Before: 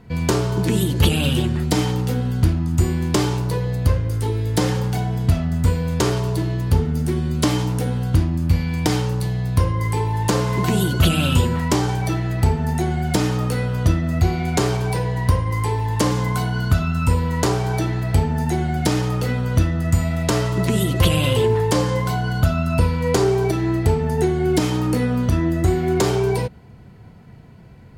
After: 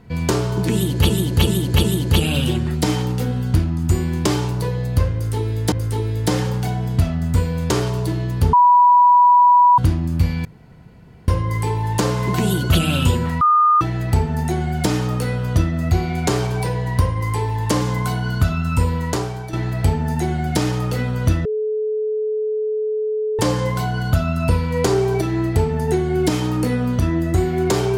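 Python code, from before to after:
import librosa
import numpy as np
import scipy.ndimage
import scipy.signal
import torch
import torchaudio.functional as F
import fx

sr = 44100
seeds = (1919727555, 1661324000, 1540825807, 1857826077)

y = fx.edit(x, sr, fx.repeat(start_s=0.73, length_s=0.37, count=4),
    fx.repeat(start_s=4.02, length_s=0.59, count=2),
    fx.bleep(start_s=6.83, length_s=1.25, hz=978.0, db=-8.0),
    fx.room_tone_fill(start_s=8.75, length_s=0.83),
    fx.bleep(start_s=11.71, length_s=0.4, hz=1220.0, db=-10.5),
    fx.fade_out_to(start_s=17.24, length_s=0.59, floor_db=-12.0),
    fx.bleep(start_s=19.75, length_s=1.94, hz=430.0, db=-18.5), tone=tone)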